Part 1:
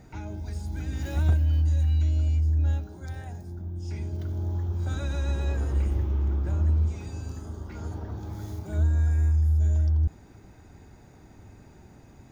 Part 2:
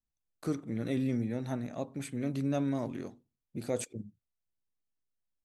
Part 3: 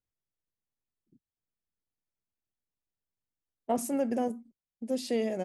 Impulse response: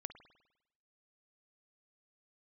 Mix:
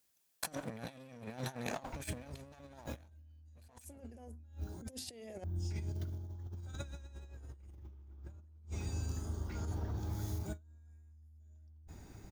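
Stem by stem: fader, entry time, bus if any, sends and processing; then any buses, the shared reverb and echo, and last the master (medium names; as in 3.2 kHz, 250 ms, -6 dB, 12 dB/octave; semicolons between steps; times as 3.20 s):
-13.0 dB, 1.80 s, bus A, send -19.5 dB, none
+2.5 dB, 0.00 s, no bus, no send, comb filter that takes the minimum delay 1.2 ms; high-pass 160 Hz 6 dB/octave; tilt EQ +2 dB/octave
+2.0 dB, 0.00 s, bus A, no send, high-pass 220 Hz 12 dB/octave
bus A: 0.0 dB, treble shelf 4.3 kHz +10 dB; compression 12:1, threshold -32 dBFS, peak gain reduction 12 dB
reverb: on, RT60 0.90 s, pre-delay 50 ms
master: bass shelf 64 Hz +6.5 dB; compressor with a negative ratio -43 dBFS, ratio -0.5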